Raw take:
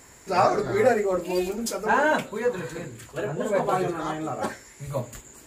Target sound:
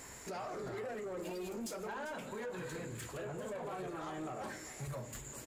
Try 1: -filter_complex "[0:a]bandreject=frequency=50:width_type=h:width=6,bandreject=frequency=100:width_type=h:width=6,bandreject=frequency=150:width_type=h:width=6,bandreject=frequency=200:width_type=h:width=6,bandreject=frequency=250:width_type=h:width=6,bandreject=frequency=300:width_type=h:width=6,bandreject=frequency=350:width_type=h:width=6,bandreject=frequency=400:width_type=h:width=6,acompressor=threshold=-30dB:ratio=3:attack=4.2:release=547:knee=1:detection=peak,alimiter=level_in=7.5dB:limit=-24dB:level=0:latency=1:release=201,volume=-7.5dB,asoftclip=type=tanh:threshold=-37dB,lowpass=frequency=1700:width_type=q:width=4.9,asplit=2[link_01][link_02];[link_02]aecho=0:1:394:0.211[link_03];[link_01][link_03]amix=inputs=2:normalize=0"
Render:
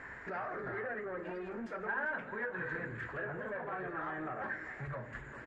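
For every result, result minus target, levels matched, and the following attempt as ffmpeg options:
2,000 Hz band +8.0 dB; downward compressor: peak gain reduction +6.5 dB
-filter_complex "[0:a]bandreject=frequency=50:width_type=h:width=6,bandreject=frequency=100:width_type=h:width=6,bandreject=frequency=150:width_type=h:width=6,bandreject=frequency=200:width_type=h:width=6,bandreject=frequency=250:width_type=h:width=6,bandreject=frequency=300:width_type=h:width=6,bandreject=frequency=350:width_type=h:width=6,bandreject=frequency=400:width_type=h:width=6,acompressor=threshold=-30dB:ratio=3:attack=4.2:release=547:knee=1:detection=peak,alimiter=level_in=7.5dB:limit=-24dB:level=0:latency=1:release=201,volume=-7.5dB,asoftclip=type=tanh:threshold=-37dB,asplit=2[link_01][link_02];[link_02]aecho=0:1:394:0.211[link_03];[link_01][link_03]amix=inputs=2:normalize=0"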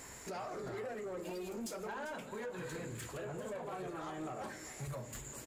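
downward compressor: peak gain reduction +6.5 dB
-filter_complex "[0:a]bandreject=frequency=50:width_type=h:width=6,bandreject=frequency=100:width_type=h:width=6,bandreject=frequency=150:width_type=h:width=6,bandreject=frequency=200:width_type=h:width=6,bandreject=frequency=250:width_type=h:width=6,bandreject=frequency=300:width_type=h:width=6,bandreject=frequency=350:width_type=h:width=6,bandreject=frequency=400:width_type=h:width=6,acompressor=threshold=-20dB:ratio=3:attack=4.2:release=547:knee=1:detection=peak,alimiter=level_in=7.5dB:limit=-24dB:level=0:latency=1:release=201,volume=-7.5dB,asoftclip=type=tanh:threshold=-37dB,asplit=2[link_01][link_02];[link_02]aecho=0:1:394:0.211[link_03];[link_01][link_03]amix=inputs=2:normalize=0"

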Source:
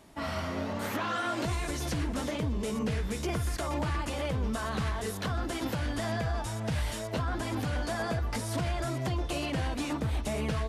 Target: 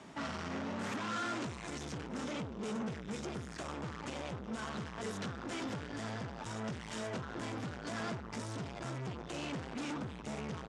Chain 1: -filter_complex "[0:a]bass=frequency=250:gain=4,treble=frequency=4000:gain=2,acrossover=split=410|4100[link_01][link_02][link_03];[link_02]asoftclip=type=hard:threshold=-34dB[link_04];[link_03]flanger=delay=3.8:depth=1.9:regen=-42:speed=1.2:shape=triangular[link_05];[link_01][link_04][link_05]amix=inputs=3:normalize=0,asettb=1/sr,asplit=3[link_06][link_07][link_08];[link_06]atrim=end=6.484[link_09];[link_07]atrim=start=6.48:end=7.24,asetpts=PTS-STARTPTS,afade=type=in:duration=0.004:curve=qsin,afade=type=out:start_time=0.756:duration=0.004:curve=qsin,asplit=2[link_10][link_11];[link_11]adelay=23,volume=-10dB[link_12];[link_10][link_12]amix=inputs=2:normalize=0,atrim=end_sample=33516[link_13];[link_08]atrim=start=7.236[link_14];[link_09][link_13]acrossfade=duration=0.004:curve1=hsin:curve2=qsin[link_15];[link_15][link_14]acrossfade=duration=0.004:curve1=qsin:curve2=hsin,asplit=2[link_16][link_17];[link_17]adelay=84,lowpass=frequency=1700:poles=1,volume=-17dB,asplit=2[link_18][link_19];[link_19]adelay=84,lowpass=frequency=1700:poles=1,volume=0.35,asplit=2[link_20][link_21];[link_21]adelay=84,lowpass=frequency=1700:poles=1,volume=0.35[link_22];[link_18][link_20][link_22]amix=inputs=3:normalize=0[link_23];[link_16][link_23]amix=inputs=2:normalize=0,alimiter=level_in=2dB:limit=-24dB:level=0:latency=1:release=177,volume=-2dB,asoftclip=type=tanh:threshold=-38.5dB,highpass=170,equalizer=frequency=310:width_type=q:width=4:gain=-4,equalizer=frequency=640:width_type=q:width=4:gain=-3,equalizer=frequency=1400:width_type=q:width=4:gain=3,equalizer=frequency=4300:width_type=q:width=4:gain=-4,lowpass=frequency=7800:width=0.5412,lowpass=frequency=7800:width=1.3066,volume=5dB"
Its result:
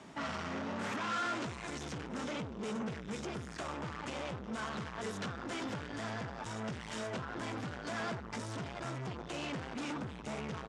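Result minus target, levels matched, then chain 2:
hard clipping: distortion −6 dB
-filter_complex "[0:a]bass=frequency=250:gain=4,treble=frequency=4000:gain=2,acrossover=split=410|4100[link_01][link_02][link_03];[link_02]asoftclip=type=hard:threshold=-40dB[link_04];[link_03]flanger=delay=3.8:depth=1.9:regen=-42:speed=1.2:shape=triangular[link_05];[link_01][link_04][link_05]amix=inputs=3:normalize=0,asettb=1/sr,asplit=3[link_06][link_07][link_08];[link_06]atrim=end=6.484[link_09];[link_07]atrim=start=6.48:end=7.24,asetpts=PTS-STARTPTS,afade=type=in:duration=0.004:curve=qsin,afade=type=out:start_time=0.756:duration=0.004:curve=qsin,asplit=2[link_10][link_11];[link_11]adelay=23,volume=-10dB[link_12];[link_10][link_12]amix=inputs=2:normalize=0,atrim=end_sample=33516[link_13];[link_08]atrim=start=7.236[link_14];[link_09][link_13]acrossfade=duration=0.004:curve1=hsin:curve2=qsin[link_15];[link_15][link_14]acrossfade=duration=0.004:curve1=qsin:curve2=hsin,asplit=2[link_16][link_17];[link_17]adelay=84,lowpass=frequency=1700:poles=1,volume=-17dB,asplit=2[link_18][link_19];[link_19]adelay=84,lowpass=frequency=1700:poles=1,volume=0.35,asplit=2[link_20][link_21];[link_21]adelay=84,lowpass=frequency=1700:poles=1,volume=0.35[link_22];[link_18][link_20][link_22]amix=inputs=3:normalize=0[link_23];[link_16][link_23]amix=inputs=2:normalize=0,alimiter=level_in=2dB:limit=-24dB:level=0:latency=1:release=177,volume=-2dB,asoftclip=type=tanh:threshold=-38.5dB,highpass=170,equalizer=frequency=310:width_type=q:width=4:gain=-4,equalizer=frequency=640:width_type=q:width=4:gain=-3,equalizer=frequency=1400:width_type=q:width=4:gain=3,equalizer=frequency=4300:width_type=q:width=4:gain=-4,lowpass=frequency=7800:width=0.5412,lowpass=frequency=7800:width=1.3066,volume=5dB"

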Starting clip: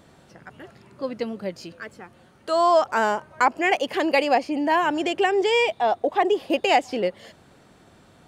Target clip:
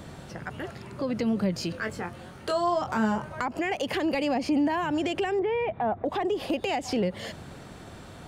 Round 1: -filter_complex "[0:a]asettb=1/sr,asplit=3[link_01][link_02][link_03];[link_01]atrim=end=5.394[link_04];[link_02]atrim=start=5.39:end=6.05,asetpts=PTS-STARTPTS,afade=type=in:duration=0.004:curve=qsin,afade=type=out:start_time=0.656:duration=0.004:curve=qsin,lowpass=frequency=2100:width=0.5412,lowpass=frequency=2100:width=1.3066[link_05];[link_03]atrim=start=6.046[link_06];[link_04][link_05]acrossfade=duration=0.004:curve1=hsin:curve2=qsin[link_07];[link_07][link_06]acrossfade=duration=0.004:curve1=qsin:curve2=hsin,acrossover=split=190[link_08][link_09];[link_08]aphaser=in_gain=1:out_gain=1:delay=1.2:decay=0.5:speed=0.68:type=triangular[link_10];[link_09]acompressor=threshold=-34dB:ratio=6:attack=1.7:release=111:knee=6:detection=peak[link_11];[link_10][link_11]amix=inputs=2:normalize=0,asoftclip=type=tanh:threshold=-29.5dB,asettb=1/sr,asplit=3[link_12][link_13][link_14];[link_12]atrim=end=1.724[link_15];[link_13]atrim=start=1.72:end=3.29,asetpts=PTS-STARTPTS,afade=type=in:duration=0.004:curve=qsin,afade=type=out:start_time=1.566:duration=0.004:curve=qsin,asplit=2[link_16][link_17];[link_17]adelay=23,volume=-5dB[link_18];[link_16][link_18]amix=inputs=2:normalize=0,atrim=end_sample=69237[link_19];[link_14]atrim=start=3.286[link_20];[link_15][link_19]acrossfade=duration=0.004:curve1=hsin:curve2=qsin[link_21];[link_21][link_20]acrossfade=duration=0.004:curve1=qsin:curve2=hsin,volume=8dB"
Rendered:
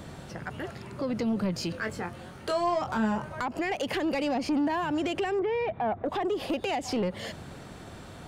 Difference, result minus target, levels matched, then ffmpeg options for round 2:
soft clipping: distortion +17 dB
-filter_complex "[0:a]asettb=1/sr,asplit=3[link_01][link_02][link_03];[link_01]atrim=end=5.394[link_04];[link_02]atrim=start=5.39:end=6.05,asetpts=PTS-STARTPTS,afade=type=in:duration=0.004:curve=qsin,afade=type=out:start_time=0.656:duration=0.004:curve=qsin,lowpass=frequency=2100:width=0.5412,lowpass=frequency=2100:width=1.3066[link_05];[link_03]atrim=start=6.046[link_06];[link_04][link_05]acrossfade=duration=0.004:curve1=hsin:curve2=qsin[link_07];[link_07][link_06]acrossfade=duration=0.004:curve1=qsin:curve2=hsin,acrossover=split=190[link_08][link_09];[link_08]aphaser=in_gain=1:out_gain=1:delay=1.2:decay=0.5:speed=0.68:type=triangular[link_10];[link_09]acompressor=threshold=-34dB:ratio=6:attack=1.7:release=111:knee=6:detection=peak[link_11];[link_10][link_11]amix=inputs=2:normalize=0,asoftclip=type=tanh:threshold=-19dB,asettb=1/sr,asplit=3[link_12][link_13][link_14];[link_12]atrim=end=1.724[link_15];[link_13]atrim=start=1.72:end=3.29,asetpts=PTS-STARTPTS,afade=type=in:duration=0.004:curve=qsin,afade=type=out:start_time=1.566:duration=0.004:curve=qsin,asplit=2[link_16][link_17];[link_17]adelay=23,volume=-5dB[link_18];[link_16][link_18]amix=inputs=2:normalize=0,atrim=end_sample=69237[link_19];[link_14]atrim=start=3.286[link_20];[link_15][link_19]acrossfade=duration=0.004:curve1=hsin:curve2=qsin[link_21];[link_21][link_20]acrossfade=duration=0.004:curve1=qsin:curve2=hsin,volume=8dB"

